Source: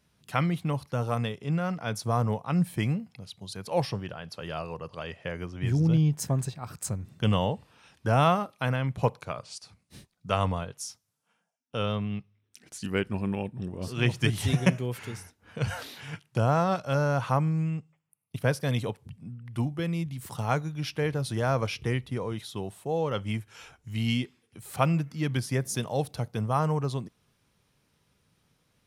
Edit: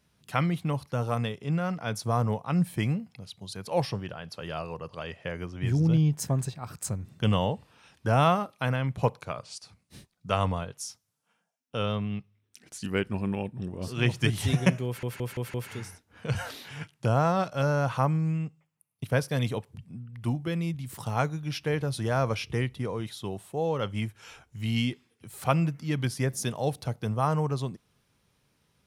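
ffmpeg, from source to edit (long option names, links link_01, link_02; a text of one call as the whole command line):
ffmpeg -i in.wav -filter_complex "[0:a]asplit=5[link_01][link_02][link_03][link_04][link_05];[link_01]atrim=end=15.032[link_06];[link_02]atrim=start=14.858:end=15.032[link_07];[link_03]atrim=start=14.858:end=15.032[link_08];[link_04]atrim=start=14.858:end=15.032[link_09];[link_05]atrim=start=14.858[link_10];[link_06][link_07]acrossfade=duration=0.004:curve1=hsin:curve2=hsin[link_11];[link_11][link_08]acrossfade=duration=0.004:curve1=hsin:curve2=hsin[link_12];[link_12][link_09]acrossfade=duration=0.004:curve1=hsin:curve2=hsin[link_13];[link_13][link_10]acrossfade=duration=0.004:curve1=hsin:curve2=hsin" out.wav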